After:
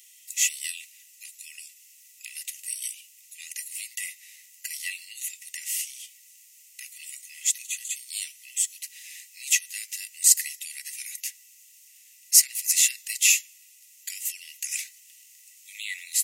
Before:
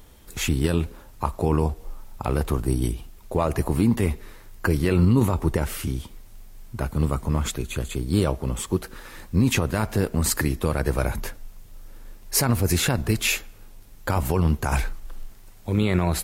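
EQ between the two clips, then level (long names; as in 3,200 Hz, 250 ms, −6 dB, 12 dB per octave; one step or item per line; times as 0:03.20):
high-shelf EQ 4,200 Hz +7 dB
dynamic equaliser 2,500 Hz, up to −5 dB, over −44 dBFS, Q 3
Chebyshev high-pass with heavy ripple 1,900 Hz, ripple 9 dB
+5.5 dB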